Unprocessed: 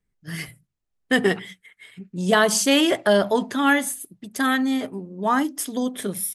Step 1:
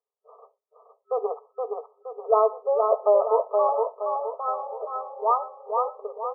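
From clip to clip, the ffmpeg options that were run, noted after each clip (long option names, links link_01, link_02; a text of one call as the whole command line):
ffmpeg -i in.wav -af "afftfilt=real='re*between(b*sr/4096,400,1300)':imag='im*between(b*sr/4096,400,1300)':win_size=4096:overlap=0.75,aecho=1:1:470|940|1410|1880|2350|2820:0.631|0.278|0.122|0.0537|0.0236|0.0104" out.wav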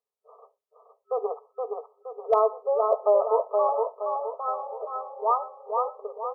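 ffmpeg -i in.wav -af "asoftclip=type=hard:threshold=-9dB,volume=-1.5dB" out.wav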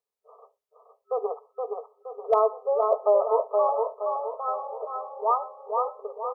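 ffmpeg -i in.wav -af "aecho=1:1:496|992|1488|1984:0.119|0.0606|0.0309|0.0158" out.wav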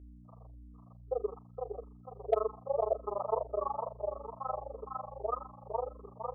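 ffmpeg -i in.wav -filter_complex "[0:a]tremolo=f=24:d=1,aeval=exprs='val(0)+0.00501*(sin(2*PI*60*n/s)+sin(2*PI*2*60*n/s)/2+sin(2*PI*3*60*n/s)/3+sin(2*PI*4*60*n/s)/4+sin(2*PI*5*60*n/s)/5)':channel_layout=same,asplit=2[link_01][link_02];[link_02]afreqshift=-1.7[link_03];[link_01][link_03]amix=inputs=2:normalize=1,volume=-2dB" out.wav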